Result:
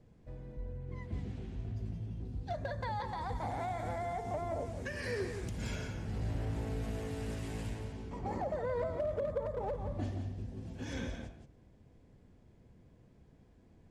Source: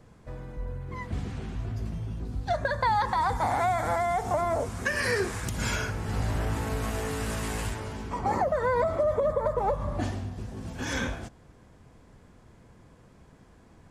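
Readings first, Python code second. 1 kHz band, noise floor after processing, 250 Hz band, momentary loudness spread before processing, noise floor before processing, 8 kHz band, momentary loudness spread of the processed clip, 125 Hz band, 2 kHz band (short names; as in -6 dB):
-13.0 dB, -62 dBFS, -6.5 dB, 12 LU, -55 dBFS, -15.0 dB, 8 LU, -6.0 dB, -14.0 dB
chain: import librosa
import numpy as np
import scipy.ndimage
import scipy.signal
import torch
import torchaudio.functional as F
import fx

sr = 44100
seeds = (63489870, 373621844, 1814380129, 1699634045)

p1 = fx.lowpass(x, sr, hz=2600.0, slope=6)
p2 = fx.peak_eq(p1, sr, hz=1200.0, db=-11.0, octaves=1.3)
p3 = np.clip(p2, -10.0 ** (-23.0 / 20.0), 10.0 ** (-23.0 / 20.0))
p4 = p3 + fx.echo_single(p3, sr, ms=174, db=-8.0, dry=0)
y = F.gain(torch.from_numpy(p4), -6.5).numpy()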